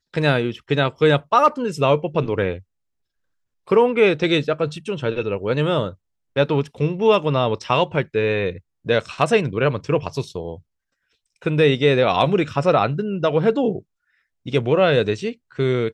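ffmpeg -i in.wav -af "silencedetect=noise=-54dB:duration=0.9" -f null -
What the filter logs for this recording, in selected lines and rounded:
silence_start: 2.63
silence_end: 3.67 | silence_duration: 1.04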